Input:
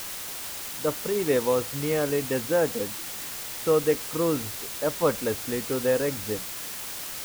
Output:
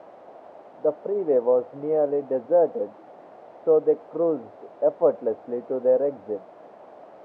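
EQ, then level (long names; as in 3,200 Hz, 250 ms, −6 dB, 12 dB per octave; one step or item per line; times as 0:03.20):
high-pass filter 250 Hz 12 dB per octave
low-pass with resonance 660 Hz, resonance Q 3.4
−2.0 dB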